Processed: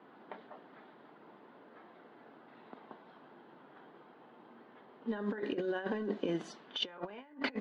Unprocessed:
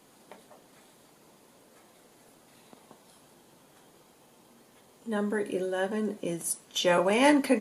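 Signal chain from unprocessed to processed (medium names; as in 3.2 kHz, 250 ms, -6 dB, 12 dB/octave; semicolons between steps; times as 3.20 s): cabinet simulation 230–3900 Hz, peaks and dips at 540 Hz -5 dB, 1.5 kHz +3 dB, 2.4 kHz -5 dB; compressor with a negative ratio -35 dBFS, ratio -0.5; level-controlled noise filter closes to 1.7 kHz, open at -29.5 dBFS; trim -2 dB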